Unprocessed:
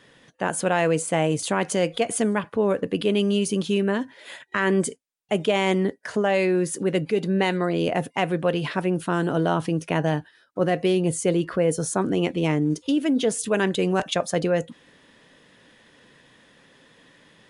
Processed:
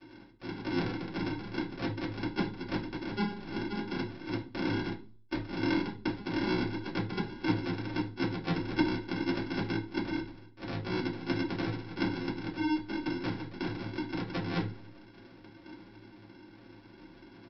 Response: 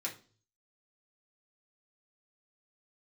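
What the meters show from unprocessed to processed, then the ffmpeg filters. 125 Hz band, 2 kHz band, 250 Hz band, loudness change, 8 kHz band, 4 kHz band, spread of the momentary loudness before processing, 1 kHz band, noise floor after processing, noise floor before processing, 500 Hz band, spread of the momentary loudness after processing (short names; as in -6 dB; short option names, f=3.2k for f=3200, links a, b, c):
-9.0 dB, -9.0 dB, -8.0 dB, -11.0 dB, under -30 dB, -9.5 dB, 5 LU, -11.5 dB, -55 dBFS, -57 dBFS, -16.5 dB, 21 LU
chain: -filter_complex "[0:a]highpass=870,aphaser=in_gain=1:out_gain=1:delay=3.7:decay=0.33:speed=0.83:type=sinusoidal,aecho=1:1:3.3:0.81,areverse,acompressor=threshold=-35dB:ratio=12,areverse,aeval=exprs='0.0668*(cos(1*acos(clip(val(0)/0.0668,-1,1)))-cos(1*PI/2))+0.0075*(cos(3*acos(clip(val(0)/0.0668,-1,1)))-cos(3*PI/2))+0.0266*(cos(4*acos(clip(val(0)/0.0668,-1,1)))-cos(4*PI/2))':c=same,acrossover=split=2600[a][b];[b]acompressor=threshold=-47dB:ratio=4:attack=1:release=60[c];[a][c]amix=inputs=2:normalize=0,aresample=11025,acrusher=samples=18:mix=1:aa=0.000001,aresample=44100[d];[1:a]atrim=start_sample=2205[e];[d][e]afir=irnorm=-1:irlink=0,volume=8.5dB"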